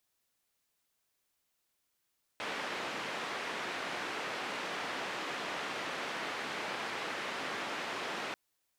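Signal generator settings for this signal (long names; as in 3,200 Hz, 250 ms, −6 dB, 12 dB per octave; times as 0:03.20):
band-limited noise 240–2,200 Hz, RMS −38.5 dBFS 5.94 s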